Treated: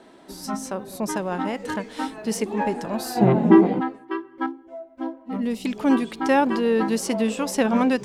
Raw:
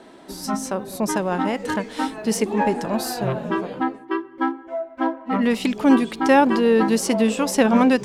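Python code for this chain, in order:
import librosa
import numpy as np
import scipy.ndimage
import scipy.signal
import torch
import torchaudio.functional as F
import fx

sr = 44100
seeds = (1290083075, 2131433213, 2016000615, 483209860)

y = fx.small_body(x, sr, hz=(220.0, 310.0, 760.0, 2000.0), ring_ms=25, db=fx.line((3.15, 14.0), (3.79, 17.0)), at=(3.15, 3.79), fade=0.02)
y = fx.peak_eq(y, sr, hz=1500.0, db=-11.5, octaves=2.4, at=(4.46, 5.66))
y = F.gain(torch.from_numpy(y), -4.0).numpy()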